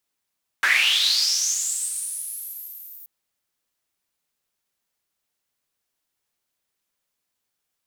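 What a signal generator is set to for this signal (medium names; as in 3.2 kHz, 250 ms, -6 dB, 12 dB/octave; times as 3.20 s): swept filtered noise white, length 2.43 s bandpass, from 1.5 kHz, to 15 kHz, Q 8.1, linear, gain ramp -30.5 dB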